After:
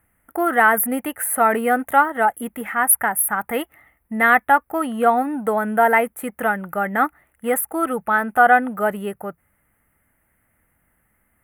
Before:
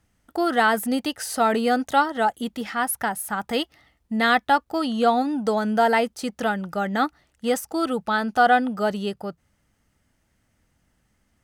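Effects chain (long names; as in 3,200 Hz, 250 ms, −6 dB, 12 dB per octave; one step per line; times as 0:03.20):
drawn EQ curve 220 Hz 0 dB, 2,100 Hz +8 dB, 5,000 Hz −27 dB, 11,000 Hz +15 dB
level −1 dB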